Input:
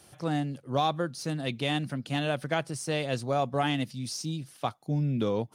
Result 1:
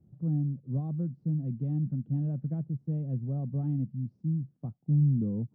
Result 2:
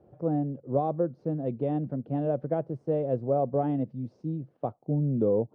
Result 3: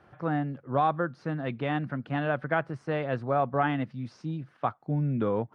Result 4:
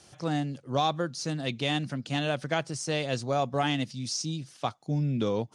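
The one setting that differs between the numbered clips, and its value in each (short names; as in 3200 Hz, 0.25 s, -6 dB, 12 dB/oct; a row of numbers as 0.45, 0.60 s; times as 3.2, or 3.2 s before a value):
synth low-pass, frequency: 180, 520, 1500, 6700 Hz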